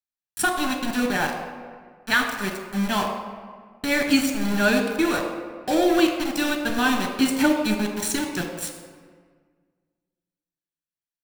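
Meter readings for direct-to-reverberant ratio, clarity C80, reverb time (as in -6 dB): 3.0 dB, 7.0 dB, 1.7 s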